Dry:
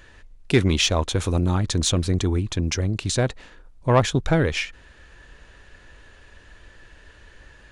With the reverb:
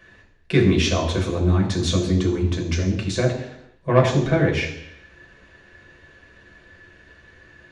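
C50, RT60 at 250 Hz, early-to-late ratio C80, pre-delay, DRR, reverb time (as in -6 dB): 7.0 dB, 0.80 s, 9.5 dB, 3 ms, -1.5 dB, 0.80 s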